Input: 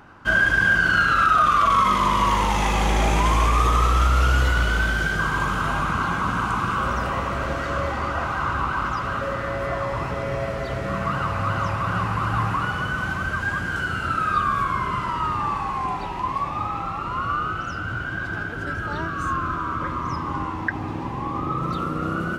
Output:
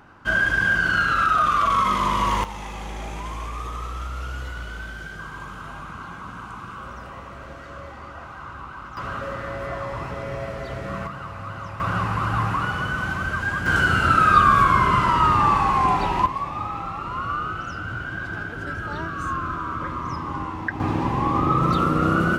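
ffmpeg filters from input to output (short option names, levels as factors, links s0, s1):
-af "asetnsamples=n=441:p=0,asendcmd='2.44 volume volume -13dB;8.97 volume volume -4dB;11.07 volume volume -10dB;11.8 volume volume 0dB;13.66 volume volume 7dB;16.26 volume volume -2dB;20.8 volume volume 6dB',volume=0.794"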